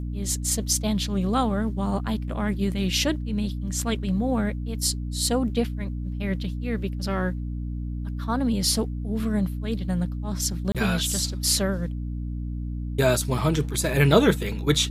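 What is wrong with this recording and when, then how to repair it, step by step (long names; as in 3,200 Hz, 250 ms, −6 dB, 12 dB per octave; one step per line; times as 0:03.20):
mains hum 60 Hz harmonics 5 −30 dBFS
0:10.72–0:10.75: drop-out 27 ms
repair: hum removal 60 Hz, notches 5
repair the gap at 0:10.72, 27 ms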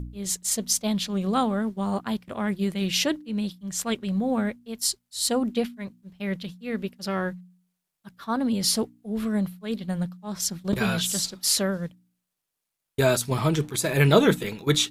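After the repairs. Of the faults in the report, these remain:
none of them is left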